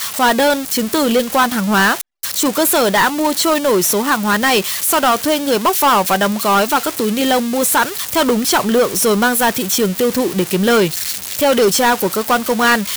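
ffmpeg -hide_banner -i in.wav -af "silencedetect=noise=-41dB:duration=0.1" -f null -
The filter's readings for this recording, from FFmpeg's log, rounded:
silence_start: 2.01
silence_end: 2.23 | silence_duration: 0.22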